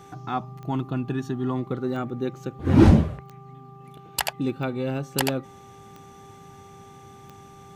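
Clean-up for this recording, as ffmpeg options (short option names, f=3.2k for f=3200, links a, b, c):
-af "adeclick=t=4,bandreject=f=395.3:t=h:w=4,bandreject=f=790.6:t=h:w=4,bandreject=f=1.1859k:t=h:w=4"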